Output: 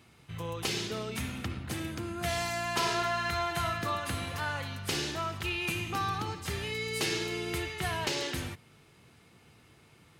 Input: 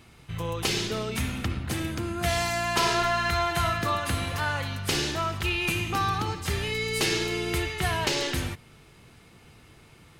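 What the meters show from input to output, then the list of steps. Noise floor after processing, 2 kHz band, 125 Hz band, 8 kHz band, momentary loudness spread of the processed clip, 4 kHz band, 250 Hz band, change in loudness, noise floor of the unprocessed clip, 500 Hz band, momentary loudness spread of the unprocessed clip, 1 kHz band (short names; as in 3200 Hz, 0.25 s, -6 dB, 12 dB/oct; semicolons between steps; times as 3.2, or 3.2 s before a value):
-60 dBFS, -5.5 dB, -7.0 dB, -5.5 dB, 7 LU, -5.5 dB, -5.5 dB, -5.5 dB, -54 dBFS, -5.5 dB, 6 LU, -5.5 dB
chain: HPF 77 Hz; gain -5.5 dB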